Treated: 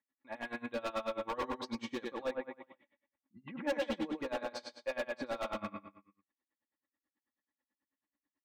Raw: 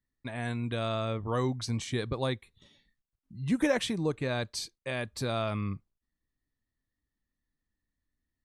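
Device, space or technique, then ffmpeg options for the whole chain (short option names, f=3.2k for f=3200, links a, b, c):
helicopter radio: -filter_complex "[0:a]highpass=310,lowpass=2.5k,equalizer=f=930:t=o:w=0.42:g=6,aecho=1:1:95|190|285|380|475:0.562|0.247|0.109|0.0479|0.0211,aeval=exprs='val(0)*pow(10,-26*(0.5-0.5*cos(2*PI*9.2*n/s))/20)':c=same,asoftclip=type=hard:threshold=-36dB,aecho=1:1:3.6:0.64,asettb=1/sr,asplit=3[a][b][c];[a]atrim=end=2.314[d];[b]atrim=start=2.31:end=3.67,asetpts=PTS-STARTPTS,afade=t=in:d=0.004:c=qsin,afade=t=out:st=1.356:d=0.004:c=qsin,lowpass=f=2.6k:w=0.5412,lowpass=f=2.6k:w=1.3066[e];[c]atrim=start=3.666[f];[d][e]acrossfade=d=0.004:c1=hsin:c2=qsin[g];[g][f]acrossfade=d=0.004:c1=qsin:c2=hsin,volume=3dB"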